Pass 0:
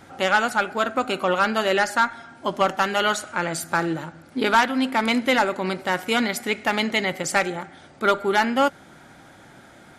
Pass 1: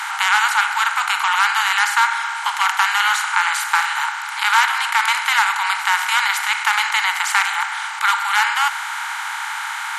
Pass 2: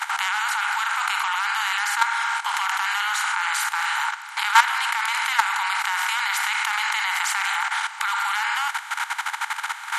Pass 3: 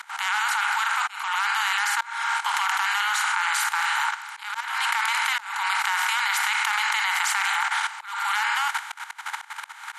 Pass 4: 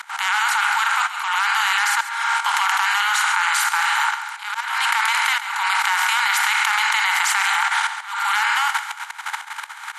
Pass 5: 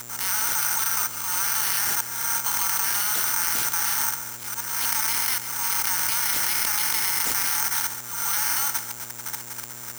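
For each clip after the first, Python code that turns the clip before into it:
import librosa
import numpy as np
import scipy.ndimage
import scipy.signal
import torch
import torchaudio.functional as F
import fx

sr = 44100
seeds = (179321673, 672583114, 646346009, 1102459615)

y1 = fx.bin_compress(x, sr, power=0.4)
y1 = scipy.signal.sosfilt(scipy.signal.butter(12, 850.0, 'highpass', fs=sr, output='sos'), y1)
y2 = fx.level_steps(y1, sr, step_db=13)
y2 = y2 * 10.0 ** (2.0 / 20.0)
y3 = fx.auto_swell(y2, sr, attack_ms=296.0)
y4 = fx.echo_feedback(y3, sr, ms=137, feedback_pct=34, wet_db=-12.5)
y4 = y4 * 10.0 ** (4.5 / 20.0)
y5 = fx.dmg_buzz(y4, sr, base_hz=120.0, harmonics=31, level_db=-36.0, tilt_db=-4, odd_only=False)
y5 = (np.kron(y5[::6], np.eye(6)[0]) * 6)[:len(y5)]
y5 = y5 * 10.0 ** (-12.5 / 20.0)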